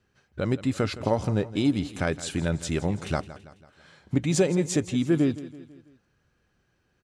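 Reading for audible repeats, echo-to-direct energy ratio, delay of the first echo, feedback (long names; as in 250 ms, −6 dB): 4, −15.0 dB, 165 ms, 50%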